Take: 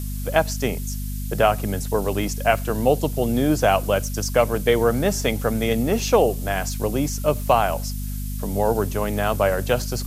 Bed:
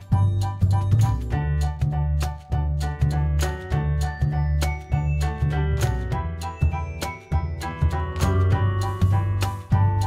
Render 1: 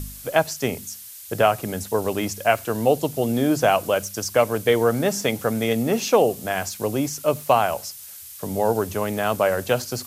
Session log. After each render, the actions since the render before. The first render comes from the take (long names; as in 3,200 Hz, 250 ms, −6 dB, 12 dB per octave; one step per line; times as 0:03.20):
hum removal 50 Hz, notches 5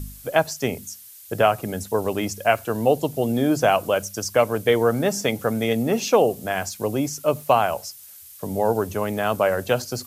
broadband denoise 6 dB, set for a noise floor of −40 dBFS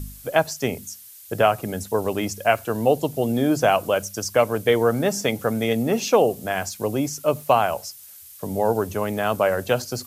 no processing that can be heard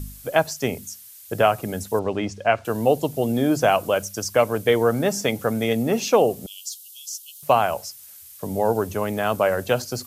0:01.99–0:02.65: high-frequency loss of the air 120 metres
0:06.46–0:07.43: Butterworth high-pass 2,900 Hz 96 dB per octave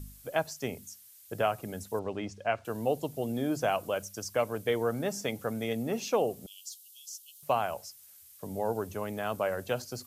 level −10.5 dB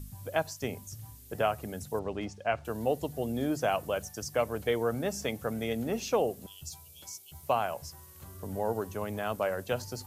mix in bed −28 dB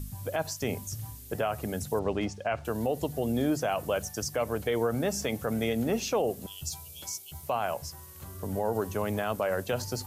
in parallel at −2.5 dB: speech leveller within 4 dB 0.5 s
on the sum: brickwall limiter −18.5 dBFS, peak gain reduction 9 dB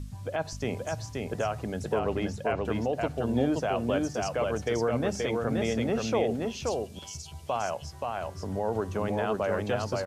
high-frequency loss of the air 82 metres
on a send: single-tap delay 527 ms −3 dB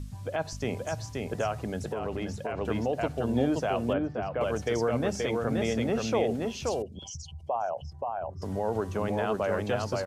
0:01.85–0:02.61: downward compressor, threshold −28 dBFS
0:03.93–0:04.41: high-frequency loss of the air 440 metres
0:06.82–0:08.42: spectral envelope exaggerated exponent 2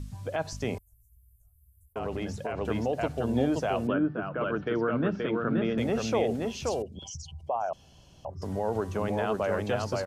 0:00.78–0:01.96: inverse Chebyshev band-stop filter 160–5,000 Hz, stop band 60 dB
0:03.87–0:05.78: loudspeaker in its box 140–3,100 Hz, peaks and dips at 170 Hz +10 dB, 320 Hz +6 dB, 520 Hz −4 dB, 770 Hz −8 dB, 1,400 Hz +9 dB, 2,100 Hz −7 dB
0:07.73–0:08.25: fill with room tone